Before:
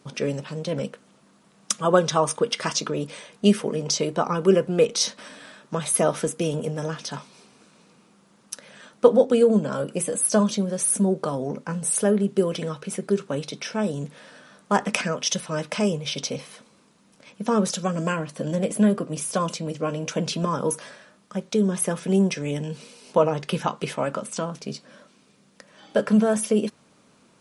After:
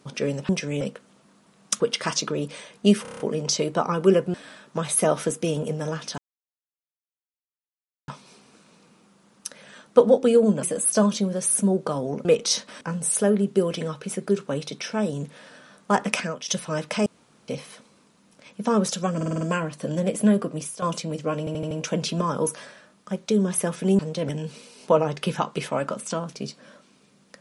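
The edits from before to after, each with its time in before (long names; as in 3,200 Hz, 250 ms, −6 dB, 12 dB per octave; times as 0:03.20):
0:00.49–0:00.79: swap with 0:22.23–0:22.55
0:01.78–0:02.39: remove
0:03.61: stutter 0.03 s, 7 plays
0:04.75–0:05.31: move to 0:11.62
0:07.15: splice in silence 1.90 s
0:09.70–0:10.00: remove
0:14.92–0:15.29: fade out, to −10 dB
0:15.87–0:16.29: fill with room tone
0:17.97: stutter 0.05 s, 6 plays
0:19.10–0:19.38: fade out, to −13.5 dB
0:19.95: stutter 0.08 s, 5 plays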